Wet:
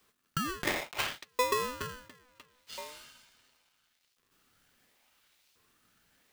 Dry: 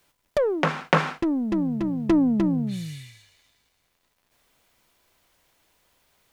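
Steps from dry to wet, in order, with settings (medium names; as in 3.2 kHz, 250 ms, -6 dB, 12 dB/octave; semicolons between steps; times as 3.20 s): compressor with a negative ratio -24 dBFS, ratio -0.5; LFO high-pass saw up 0.72 Hz 270–4100 Hz; polarity switched at an audio rate 750 Hz; trim -7 dB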